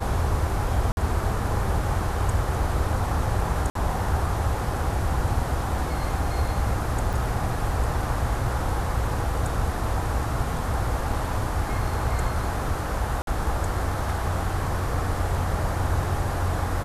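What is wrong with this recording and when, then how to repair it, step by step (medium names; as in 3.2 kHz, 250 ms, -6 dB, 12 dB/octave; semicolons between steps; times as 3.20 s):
0.92–0.97 s: dropout 51 ms
3.70–3.75 s: dropout 53 ms
7.13 s: dropout 4.3 ms
13.22–13.27 s: dropout 52 ms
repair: interpolate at 0.92 s, 51 ms; interpolate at 3.70 s, 53 ms; interpolate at 7.13 s, 4.3 ms; interpolate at 13.22 s, 52 ms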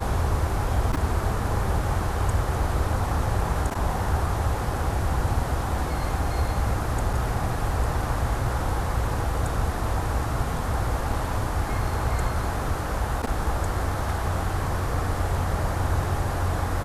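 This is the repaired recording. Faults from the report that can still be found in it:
nothing left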